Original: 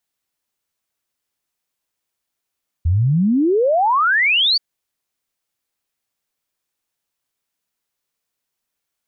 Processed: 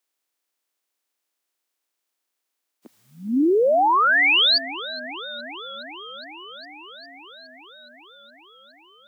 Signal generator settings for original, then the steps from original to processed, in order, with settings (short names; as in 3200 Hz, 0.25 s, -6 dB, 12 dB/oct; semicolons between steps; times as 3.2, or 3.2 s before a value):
log sweep 78 Hz -> 4700 Hz 1.73 s -12.5 dBFS
spectral limiter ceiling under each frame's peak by 21 dB; steep high-pass 250 Hz 48 dB/oct; warbling echo 0.413 s, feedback 78%, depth 143 cents, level -17 dB